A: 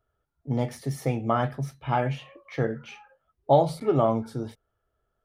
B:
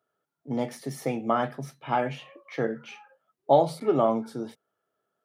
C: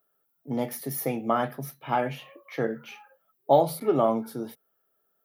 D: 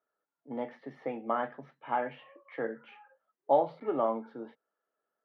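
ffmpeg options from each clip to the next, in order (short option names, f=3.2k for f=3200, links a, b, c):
-af "highpass=f=170:w=0.5412,highpass=f=170:w=1.3066"
-af "aexciter=amount=11.1:drive=3.1:freq=11k"
-af "highpass=340,equalizer=f=390:t=q:w=4:g=-6,equalizer=f=680:t=q:w=4:g=-5,equalizer=f=1.3k:t=q:w=4:g=-4,equalizer=f=2.4k:t=q:w=4:g=-7,lowpass=f=2.5k:w=0.5412,lowpass=f=2.5k:w=1.3066,volume=-2dB"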